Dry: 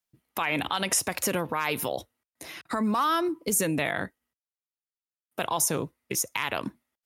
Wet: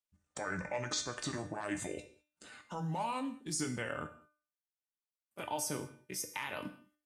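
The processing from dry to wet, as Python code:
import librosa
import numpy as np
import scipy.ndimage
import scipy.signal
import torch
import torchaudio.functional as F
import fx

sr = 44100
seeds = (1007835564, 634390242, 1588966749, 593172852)

p1 = fx.pitch_glide(x, sr, semitones=-8.5, runs='ending unshifted')
p2 = fx.level_steps(p1, sr, step_db=21)
p3 = p1 + F.gain(torch.from_numpy(p2), 1.0).numpy()
p4 = fx.comb_fb(p3, sr, f0_hz=300.0, decay_s=0.42, harmonics='all', damping=0.0, mix_pct=80)
y = fx.rev_gated(p4, sr, seeds[0], gate_ms=230, shape='falling', drr_db=9.5)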